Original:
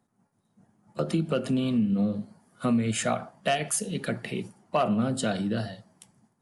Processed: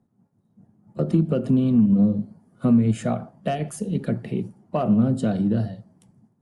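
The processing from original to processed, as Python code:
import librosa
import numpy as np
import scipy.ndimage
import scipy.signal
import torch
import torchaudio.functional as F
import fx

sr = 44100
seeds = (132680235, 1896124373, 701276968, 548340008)

y = fx.tilt_shelf(x, sr, db=9.5, hz=680.0)
y = fx.cheby_harmonics(y, sr, harmonics=(7,), levels_db=(-39,), full_scale_db=-8.5)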